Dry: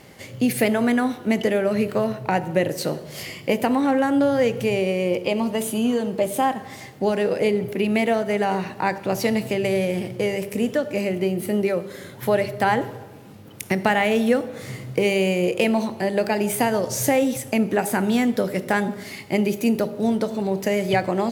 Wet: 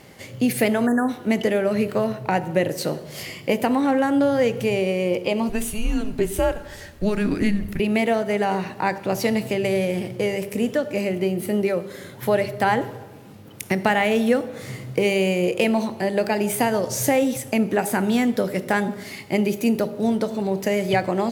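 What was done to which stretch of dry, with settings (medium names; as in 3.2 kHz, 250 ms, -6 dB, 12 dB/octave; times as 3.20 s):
0.87–1.09 s: spectral selection erased 1.9–6.3 kHz
5.49–7.80 s: frequency shift -210 Hz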